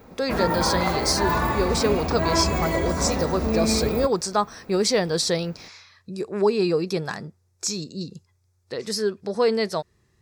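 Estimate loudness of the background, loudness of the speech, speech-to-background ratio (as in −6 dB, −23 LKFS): −24.5 LKFS, −25.0 LKFS, −0.5 dB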